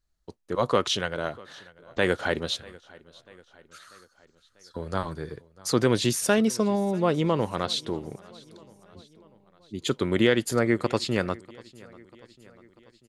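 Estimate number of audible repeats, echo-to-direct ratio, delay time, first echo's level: 3, -21.5 dB, 0.642 s, -23.0 dB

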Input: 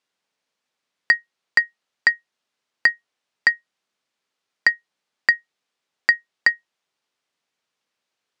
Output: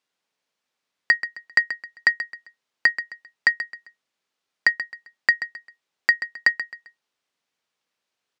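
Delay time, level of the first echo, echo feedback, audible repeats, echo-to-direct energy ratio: 0.132 s, -12.0 dB, 32%, 3, -11.5 dB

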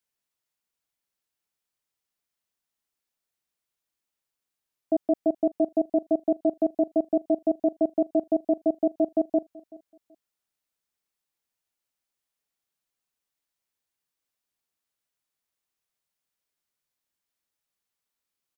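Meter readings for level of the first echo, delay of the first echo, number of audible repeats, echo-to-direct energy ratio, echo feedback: -22.0 dB, 0.38 s, 2, -21.5 dB, 26%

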